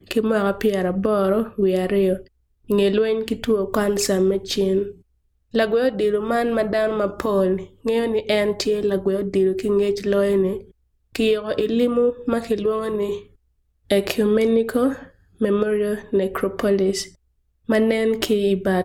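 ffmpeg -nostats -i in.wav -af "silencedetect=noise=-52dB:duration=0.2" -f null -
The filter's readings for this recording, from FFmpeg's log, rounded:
silence_start: 2.28
silence_end: 2.64 | silence_duration: 0.36
silence_start: 5.02
silence_end: 5.51 | silence_duration: 0.49
silence_start: 10.71
silence_end: 11.13 | silence_duration: 0.41
silence_start: 13.36
silence_end: 13.87 | silence_duration: 0.51
silence_start: 17.15
silence_end: 17.65 | silence_duration: 0.49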